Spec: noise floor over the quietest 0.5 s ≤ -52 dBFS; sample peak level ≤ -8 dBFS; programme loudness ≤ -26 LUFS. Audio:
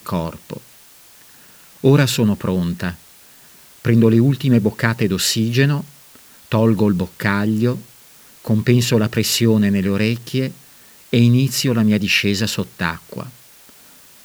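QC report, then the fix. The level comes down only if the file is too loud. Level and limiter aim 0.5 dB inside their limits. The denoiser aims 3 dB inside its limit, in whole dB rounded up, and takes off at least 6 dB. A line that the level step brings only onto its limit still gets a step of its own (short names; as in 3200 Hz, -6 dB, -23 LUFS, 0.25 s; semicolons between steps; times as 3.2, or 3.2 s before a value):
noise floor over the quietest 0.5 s -46 dBFS: fail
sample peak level -2.0 dBFS: fail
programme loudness -17.5 LUFS: fail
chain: gain -9 dB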